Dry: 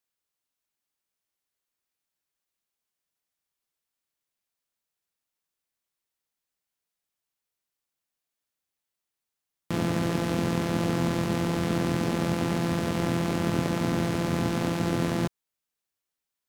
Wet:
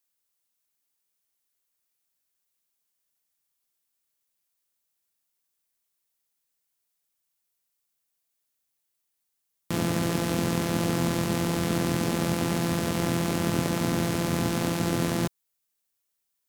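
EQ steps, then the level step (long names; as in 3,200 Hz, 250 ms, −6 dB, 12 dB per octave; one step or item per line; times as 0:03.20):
high-shelf EQ 5,900 Hz +10 dB
0.0 dB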